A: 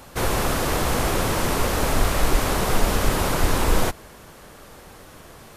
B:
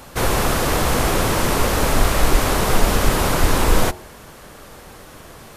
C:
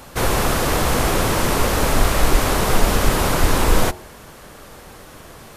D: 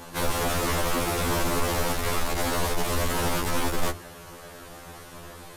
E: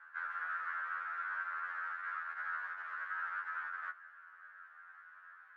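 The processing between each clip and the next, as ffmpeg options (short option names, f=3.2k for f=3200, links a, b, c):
-af "bandreject=f=90.91:t=h:w=4,bandreject=f=181.82:t=h:w=4,bandreject=f=272.73:t=h:w=4,bandreject=f=363.64:t=h:w=4,bandreject=f=454.55:t=h:w=4,bandreject=f=545.46:t=h:w=4,bandreject=f=636.37:t=h:w=4,bandreject=f=727.28:t=h:w=4,bandreject=f=818.19:t=h:w=4,bandreject=f=909.1:t=h:w=4,volume=4dB"
-af anull
-af "asoftclip=type=tanh:threshold=-19dB,afftfilt=real='re*2*eq(mod(b,4),0)':imag='im*2*eq(mod(b,4),0)':win_size=2048:overlap=0.75"
-af "asuperpass=centerf=1500:order=4:qfactor=3.7,volume=-1.5dB"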